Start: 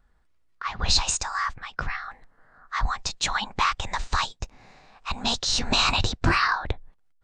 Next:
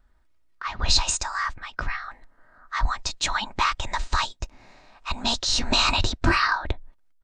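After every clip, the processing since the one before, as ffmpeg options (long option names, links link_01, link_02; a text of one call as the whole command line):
ffmpeg -i in.wav -af "aecho=1:1:3.2:0.41" out.wav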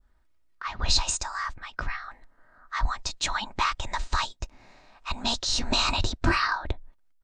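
ffmpeg -i in.wav -af "adynamicequalizer=threshold=0.0178:dfrequency=2100:dqfactor=0.76:tfrequency=2100:tqfactor=0.76:attack=5:release=100:ratio=0.375:range=2.5:mode=cutabove:tftype=bell,volume=-2.5dB" out.wav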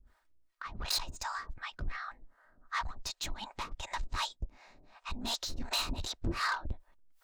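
ffmpeg -i in.wav -filter_complex "[0:a]asoftclip=type=tanh:threshold=-26dB,acrossover=split=510[link_01][link_02];[link_01]aeval=exprs='val(0)*(1-1/2+1/2*cos(2*PI*2.7*n/s))':channel_layout=same[link_03];[link_02]aeval=exprs='val(0)*(1-1/2-1/2*cos(2*PI*2.7*n/s))':channel_layout=same[link_04];[link_03][link_04]amix=inputs=2:normalize=0,areverse,acompressor=mode=upward:threshold=-55dB:ratio=2.5,areverse" out.wav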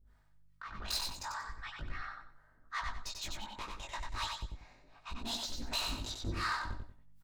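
ffmpeg -i in.wav -filter_complex "[0:a]aeval=exprs='val(0)+0.000501*(sin(2*PI*50*n/s)+sin(2*PI*2*50*n/s)/2+sin(2*PI*3*50*n/s)/3+sin(2*PI*4*50*n/s)/4+sin(2*PI*5*50*n/s)/5)':channel_layout=same,flanger=delay=17.5:depth=2.3:speed=0.37,asplit=2[link_01][link_02];[link_02]aecho=0:1:93|186|279|372:0.631|0.177|0.0495|0.0139[link_03];[link_01][link_03]amix=inputs=2:normalize=0,volume=-1dB" out.wav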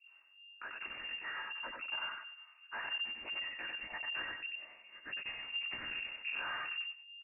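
ffmpeg -i in.wav -filter_complex "[0:a]aeval=exprs='(tanh(126*val(0)+0.45)-tanh(0.45))/126':channel_layout=same,asplit=2[link_01][link_02];[link_02]adelay=12,volume=-11.5dB[link_03];[link_01][link_03]amix=inputs=2:normalize=0,lowpass=frequency=2400:width_type=q:width=0.5098,lowpass=frequency=2400:width_type=q:width=0.6013,lowpass=frequency=2400:width_type=q:width=0.9,lowpass=frequency=2400:width_type=q:width=2.563,afreqshift=-2800,volume=4dB" out.wav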